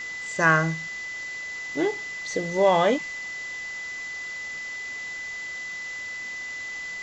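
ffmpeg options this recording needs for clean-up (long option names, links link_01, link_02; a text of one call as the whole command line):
ffmpeg -i in.wav -af "adeclick=threshold=4,bandreject=frequency=2000:width=30,afftdn=noise_reduction=30:noise_floor=-35" out.wav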